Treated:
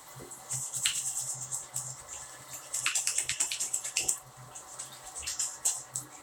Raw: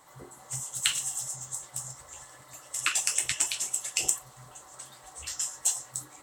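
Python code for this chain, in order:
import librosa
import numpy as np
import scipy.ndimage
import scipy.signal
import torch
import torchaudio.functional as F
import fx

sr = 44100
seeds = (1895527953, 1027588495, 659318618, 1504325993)

y = fx.band_squash(x, sr, depth_pct=40)
y = y * librosa.db_to_amplitude(-1.5)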